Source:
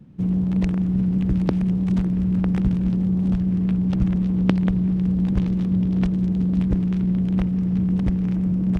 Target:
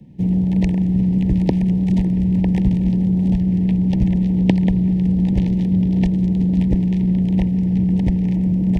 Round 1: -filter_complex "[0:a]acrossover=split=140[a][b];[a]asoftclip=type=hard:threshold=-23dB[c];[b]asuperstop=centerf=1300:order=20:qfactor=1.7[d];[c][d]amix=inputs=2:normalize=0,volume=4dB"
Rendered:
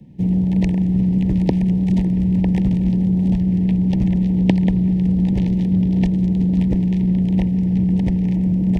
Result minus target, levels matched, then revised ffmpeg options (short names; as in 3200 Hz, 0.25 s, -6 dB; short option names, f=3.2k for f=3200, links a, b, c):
hard clip: distortion +13 dB
-filter_complex "[0:a]acrossover=split=140[a][b];[a]asoftclip=type=hard:threshold=-15dB[c];[b]asuperstop=centerf=1300:order=20:qfactor=1.7[d];[c][d]amix=inputs=2:normalize=0,volume=4dB"